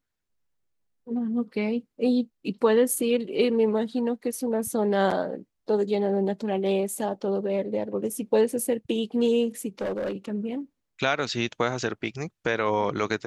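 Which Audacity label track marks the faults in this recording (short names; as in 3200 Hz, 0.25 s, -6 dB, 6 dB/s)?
9.810000	10.320000	clipped -25.5 dBFS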